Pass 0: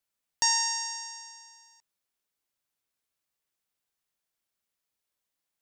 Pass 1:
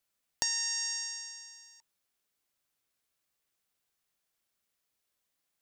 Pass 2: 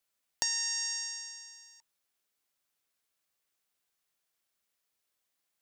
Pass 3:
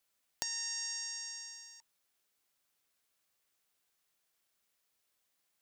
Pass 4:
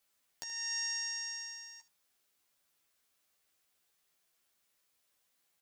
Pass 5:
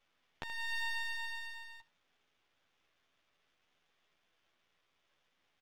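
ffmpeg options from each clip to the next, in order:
ffmpeg -i in.wav -af "bandreject=frequency=920:width=18,acompressor=threshold=-32dB:ratio=6,volume=3dB" out.wav
ffmpeg -i in.wav -af "lowshelf=frequency=260:gain=-5.5" out.wav
ffmpeg -i in.wav -af "acompressor=threshold=-42dB:ratio=2.5,volume=2.5dB" out.wav
ffmpeg -i in.wav -af "aecho=1:1:12|78:0.631|0.15,alimiter=limit=-24dB:level=0:latency=1:release=342,volume=1dB" out.wav
ffmpeg -i in.wav -af "aresample=8000,aresample=44100,aeval=exprs='max(val(0),0)':channel_layout=same,volume=10.5dB" out.wav

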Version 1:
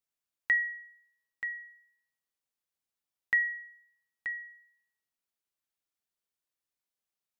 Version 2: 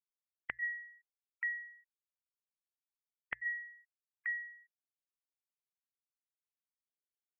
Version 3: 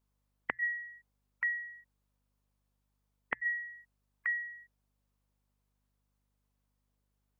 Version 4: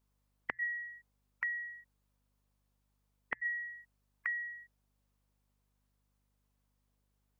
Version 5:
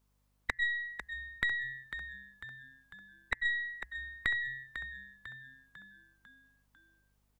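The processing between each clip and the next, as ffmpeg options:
ffmpeg -i in.wav -af "afftfilt=real='re*gte(hypot(re,im),0.00631)':imag='im*gte(hypot(re,im),0.00631)':win_size=1024:overlap=0.75,bandreject=frequency=60:width_type=h:width=6,bandreject=frequency=120:width_type=h:width=6,afftfilt=real='re*lt(hypot(re,im),0.316)':imag='im*lt(hypot(re,im),0.316)':win_size=1024:overlap=0.75" out.wav
ffmpeg -i in.wav -filter_complex "[0:a]equalizer=frequency=250:width_type=o:width=1:gain=10,equalizer=frequency=500:width_type=o:width=1:gain=8,equalizer=frequency=1000:width_type=o:width=1:gain=8,asplit=2[link_01][link_02];[link_02]acompressor=threshold=-45dB:ratio=6,volume=-1dB[link_03];[link_01][link_03]amix=inputs=2:normalize=0,aeval=exprs='val(0)+0.000112*(sin(2*PI*50*n/s)+sin(2*PI*2*50*n/s)/2+sin(2*PI*3*50*n/s)/3+sin(2*PI*4*50*n/s)/4+sin(2*PI*5*50*n/s)/5)':channel_layout=same" out.wav
ffmpeg -i in.wav -af "acompressor=threshold=-35dB:ratio=5,volume=1.5dB" out.wav
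ffmpeg -i in.wav -filter_complex "[0:a]aeval=exprs='0.112*(cos(1*acos(clip(val(0)/0.112,-1,1)))-cos(1*PI/2))+0.0282*(cos(4*acos(clip(val(0)/0.112,-1,1)))-cos(4*PI/2))+0.0158*(cos(6*acos(clip(val(0)/0.112,-1,1)))-cos(6*PI/2))+0.00891*(cos(8*acos(clip(val(0)/0.112,-1,1)))-cos(8*PI/2))':channel_layout=same,asplit=2[link_01][link_02];[link_02]asplit=5[link_03][link_04][link_05][link_06][link_07];[link_03]adelay=498,afreqshift=-66,volume=-10dB[link_08];[link_04]adelay=996,afreqshift=-132,volume=-16dB[link_09];[link_05]adelay=1494,afreqshift=-198,volume=-22dB[link_10];[link_06]adelay=1992,afreqshift=-264,volume=-28.1dB[link_11];[link_07]adelay=2490,afreqshift=-330,volume=-34.1dB[link_12];[link_08][link_09][link_10][link_11][link_12]amix=inputs=5:normalize=0[link_13];[link_01][link_13]amix=inputs=2:normalize=0,volume=4dB" out.wav

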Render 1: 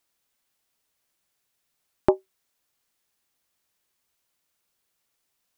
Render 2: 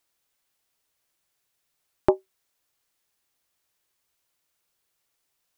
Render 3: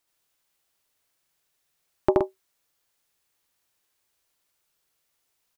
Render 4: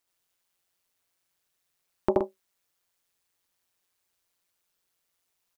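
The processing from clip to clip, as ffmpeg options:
ffmpeg -i in.wav -af "equalizer=frequency=220:width_type=o:width=0.24:gain=-9" out.wav
ffmpeg -i in.wav -af "aecho=1:1:75.8|122.4:0.891|0.501,volume=-1.5dB" out.wav
ffmpeg -i in.wav -af "tremolo=f=180:d=0.71" out.wav

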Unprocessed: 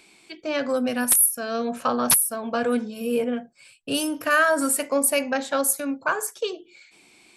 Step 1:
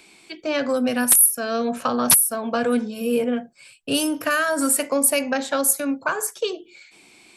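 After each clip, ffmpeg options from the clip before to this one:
ffmpeg -i in.wav -filter_complex "[0:a]acrossover=split=290|3000[link_01][link_02][link_03];[link_02]acompressor=threshold=-23dB:ratio=6[link_04];[link_01][link_04][link_03]amix=inputs=3:normalize=0,volume=3.5dB" out.wav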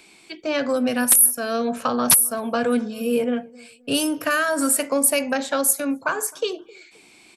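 ffmpeg -i in.wav -filter_complex "[0:a]asplit=2[link_01][link_02];[link_02]adelay=262,lowpass=frequency=890:poles=1,volume=-22dB,asplit=2[link_03][link_04];[link_04]adelay=262,lowpass=frequency=890:poles=1,volume=0.32[link_05];[link_01][link_03][link_05]amix=inputs=3:normalize=0" out.wav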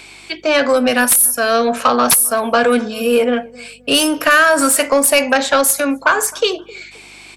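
ffmpeg -i in.wav -filter_complex "[0:a]aeval=exprs='val(0)+0.00282*(sin(2*PI*50*n/s)+sin(2*PI*2*50*n/s)/2+sin(2*PI*3*50*n/s)/3+sin(2*PI*4*50*n/s)/4+sin(2*PI*5*50*n/s)/5)':channel_layout=same,asplit=2[link_01][link_02];[link_02]highpass=frequency=720:poles=1,volume=18dB,asoftclip=type=tanh:threshold=-1dB[link_03];[link_01][link_03]amix=inputs=2:normalize=0,lowpass=frequency=5500:poles=1,volume=-6dB,volume=1.5dB" out.wav

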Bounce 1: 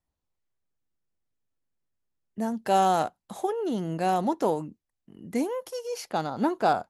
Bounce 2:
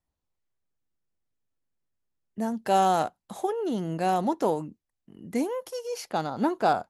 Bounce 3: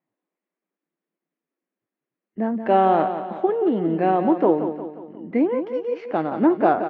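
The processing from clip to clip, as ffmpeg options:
ffmpeg -i in.wav -af anull out.wav
ffmpeg -i in.wav -filter_complex "[0:a]highpass=190,equalizer=frequency=330:width_type=q:width=4:gain=6,equalizer=frequency=860:width_type=q:width=4:gain=-5,equalizer=frequency=1400:width_type=q:width=4:gain=-4,lowpass=frequency=2300:width=0.5412,lowpass=frequency=2300:width=1.3066,asplit=2[link_01][link_02];[link_02]aecho=0:1:177|354|531|708|885:0.335|0.161|0.0772|0.037|0.0178[link_03];[link_01][link_03]amix=inputs=2:normalize=0,volume=6.5dB" -ar 32000 -c:a libvorbis -b:a 48k out.ogg

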